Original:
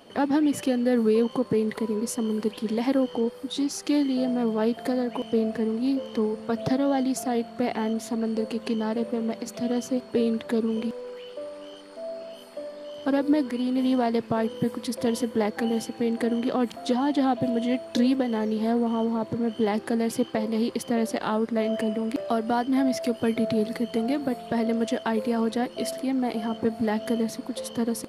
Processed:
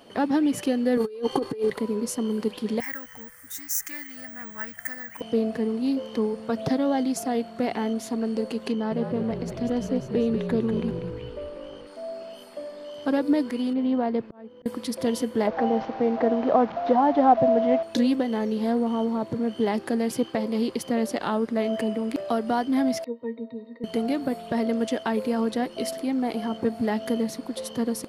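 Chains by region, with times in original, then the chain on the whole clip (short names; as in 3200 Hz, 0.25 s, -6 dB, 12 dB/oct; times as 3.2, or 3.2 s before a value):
0.97–1.7 comb 2.5 ms, depth 82% + negative-ratio compressor -25 dBFS, ratio -0.5
2.8–5.21 EQ curve 100 Hz 0 dB, 170 Hz -13 dB, 380 Hz -28 dB, 1100 Hz -8 dB, 1900 Hz +10 dB, 2700 Hz -10 dB, 4300 Hz -16 dB, 6200 Hz +7 dB, 8900 Hz +9 dB, 13000 Hz +3 dB + careless resampling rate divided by 2×, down filtered, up zero stuff
8.72–11.87 high shelf 4500 Hz -11.5 dB + frequency-shifting echo 0.193 s, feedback 50%, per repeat -52 Hz, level -7 dB
13.73–14.66 tape spacing loss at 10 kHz 28 dB + auto swell 0.752 s
15.47–17.83 delta modulation 32 kbps, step -34 dBFS + EQ curve 400 Hz 0 dB, 660 Hz +12 dB, 8800 Hz -21 dB
23.04–23.84 BPF 340–4300 Hz + octave resonator A#, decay 0.11 s
whole clip: dry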